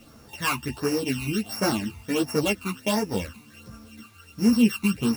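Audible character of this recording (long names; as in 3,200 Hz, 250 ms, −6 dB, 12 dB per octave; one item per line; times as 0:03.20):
a buzz of ramps at a fixed pitch in blocks of 16 samples
phaser sweep stages 12, 1.4 Hz, lowest notch 540–3,400 Hz
a quantiser's noise floor 10 bits, dither none
a shimmering, thickened sound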